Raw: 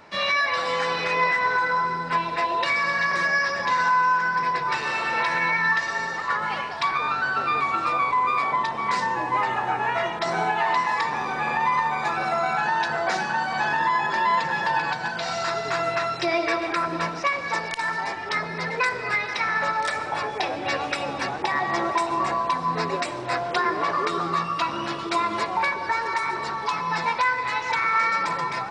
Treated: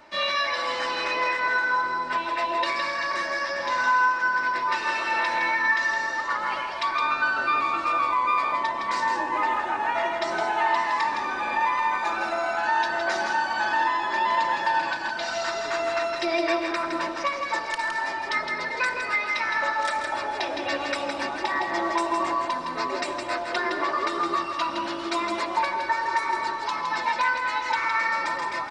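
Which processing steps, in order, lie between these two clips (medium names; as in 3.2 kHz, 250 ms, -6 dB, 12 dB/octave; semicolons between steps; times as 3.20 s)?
peaking EQ 130 Hz -5.5 dB 1.7 oct; comb 3.3 ms, depth 57%; on a send: delay 163 ms -5.5 dB; on the sum: trim -3 dB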